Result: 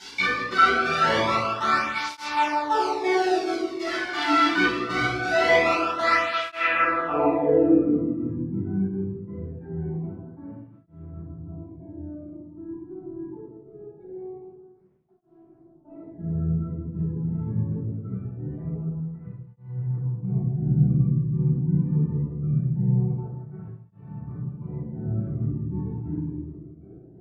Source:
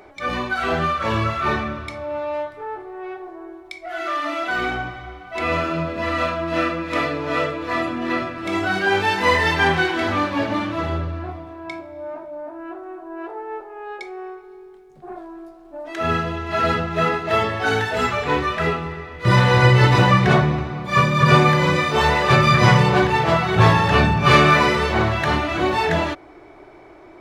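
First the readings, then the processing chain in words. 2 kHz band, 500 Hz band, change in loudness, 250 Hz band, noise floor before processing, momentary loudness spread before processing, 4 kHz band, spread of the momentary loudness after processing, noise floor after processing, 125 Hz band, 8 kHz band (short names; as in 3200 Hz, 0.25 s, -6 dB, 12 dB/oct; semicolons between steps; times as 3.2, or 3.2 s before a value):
-6.5 dB, -6.0 dB, -5.5 dB, -3.0 dB, -45 dBFS, 20 LU, -8.0 dB, 20 LU, -52 dBFS, -5.5 dB, n/a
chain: gate with hold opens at -37 dBFS; tone controls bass -3 dB, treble -7 dB; notch 590 Hz, Q 13; compressor 3:1, threshold -28 dBFS, peak gain reduction 14 dB; limiter -24.5 dBFS, peak gain reduction 10 dB; requantised 8-bit, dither triangular; step gate "x.x...xx..xxx" 178 bpm -24 dB; low-pass sweep 4700 Hz -> 150 Hz, 6.18–8.07; on a send: thinning echo 0.162 s, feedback 50%, high-pass 170 Hz, level -11 dB; on the sum: shoebox room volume 580 m³, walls mixed, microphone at 7.7 m; tape flanging out of phase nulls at 0.23 Hz, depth 1.7 ms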